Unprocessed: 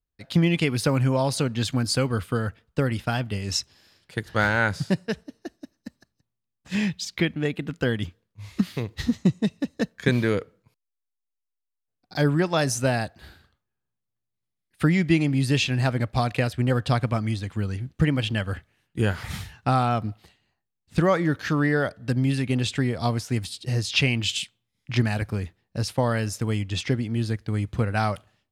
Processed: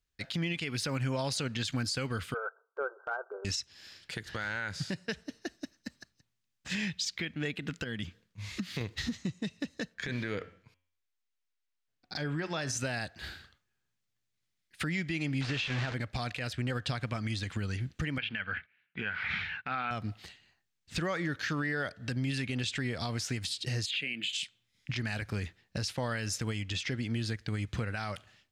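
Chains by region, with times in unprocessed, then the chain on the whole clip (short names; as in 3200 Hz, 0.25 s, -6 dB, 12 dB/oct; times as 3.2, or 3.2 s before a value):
2.34–3.45 brick-wall FIR band-pass 370–1600 Hz + transient shaper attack -9 dB, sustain -3 dB
7.84–8.81 bell 190 Hz +6 dB 0.81 oct + compressor 1.5:1, threshold -44 dBFS
9.94–12.77 LPF 3800 Hz 6 dB/oct + compressor 3:1, threshold -31 dBFS + de-hum 90.17 Hz, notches 38
15.41–15.94 delta modulation 64 kbps, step -22.5 dBFS + LPF 3400 Hz
18.18–19.91 gate -57 dBFS, range -14 dB + speaker cabinet 110–3500 Hz, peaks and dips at 120 Hz -10 dB, 330 Hz -9 dB, 570 Hz -4 dB, 1500 Hz +9 dB, 2300 Hz +10 dB
23.86–24.33 HPF 190 Hz 24 dB/oct + fixed phaser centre 2400 Hz, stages 4
whole clip: band shelf 3300 Hz +8 dB 2.7 oct; compressor 4:1, threshold -30 dBFS; limiter -24 dBFS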